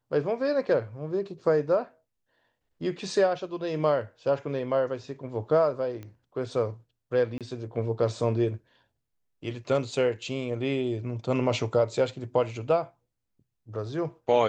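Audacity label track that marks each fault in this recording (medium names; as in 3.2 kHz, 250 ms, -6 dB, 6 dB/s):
6.030000	6.030000	pop -28 dBFS
7.380000	7.410000	dropout 27 ms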